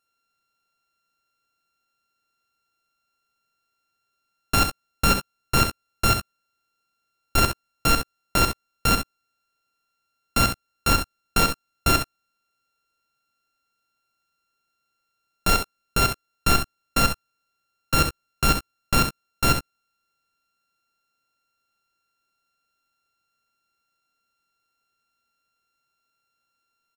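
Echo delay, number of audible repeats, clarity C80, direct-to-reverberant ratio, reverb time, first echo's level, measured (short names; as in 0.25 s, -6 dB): 66 ms, 1, none, none, none, -7.5 dB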